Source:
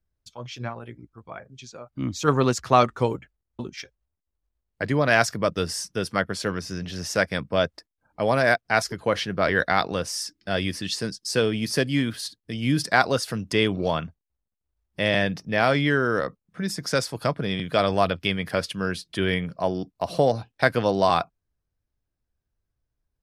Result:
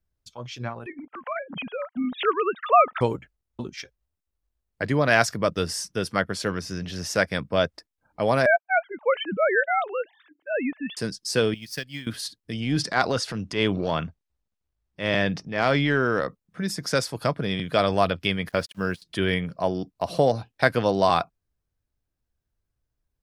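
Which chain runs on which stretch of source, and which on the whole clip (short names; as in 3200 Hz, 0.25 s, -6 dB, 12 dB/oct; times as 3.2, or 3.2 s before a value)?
0.86–3.01 sine-wave speech + upward compressor, threshold -20 dBFS + bell 320 Hz -10.5 dB 0.35 oct
8.46–10.97 sine-wave speech + mismatched tape noise reduction decoder only
11.54–12.07 transient shaper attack +8 dB, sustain -5 dB + passive tone stack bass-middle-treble 5-5-5 + decimation joined by straight lines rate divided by 2×
12.6–16.21 LPF 6900 Hz + transient shaper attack -9 dB, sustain +3 dB
18.49–19.02 gate -31 dBFS, range -22 dB + requantised 10-bit, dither none
whole clip: dry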